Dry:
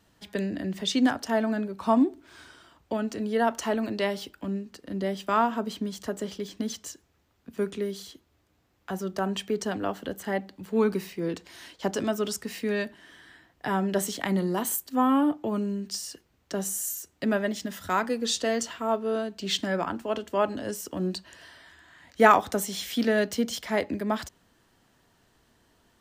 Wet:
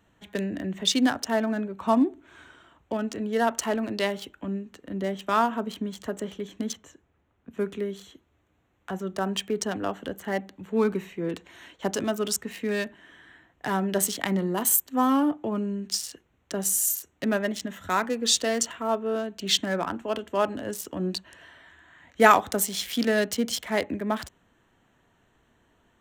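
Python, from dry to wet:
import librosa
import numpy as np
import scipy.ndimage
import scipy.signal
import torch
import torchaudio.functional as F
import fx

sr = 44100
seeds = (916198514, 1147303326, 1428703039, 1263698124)

y = fx.high_shelf(x, sr, hz=3200.0, db=-10.0, at=(6.73, 7.51))
y = fx.wiener(y, sr, points=9)
y = fx.high_shelf(y, sr, hz=3100.0, db=9.5)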